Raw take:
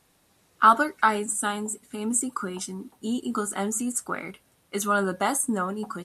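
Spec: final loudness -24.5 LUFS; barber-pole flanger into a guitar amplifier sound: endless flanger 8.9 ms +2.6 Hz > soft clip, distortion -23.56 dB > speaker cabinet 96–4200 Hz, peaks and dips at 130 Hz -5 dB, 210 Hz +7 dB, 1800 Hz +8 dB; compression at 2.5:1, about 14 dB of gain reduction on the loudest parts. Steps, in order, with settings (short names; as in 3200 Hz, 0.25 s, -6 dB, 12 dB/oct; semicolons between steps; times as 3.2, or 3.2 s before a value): compressor 2.5:1, threshold -33 dBFS; endless flanger 8.9 ms +2.6 Hz; soft clip -23.5 dBFS; speaker cabinet 96–4200 Hz, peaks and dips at 130 Hz -5 dB, 210 Hz +7 dB, 1800 Hz +8 dB; gain +12.5 dB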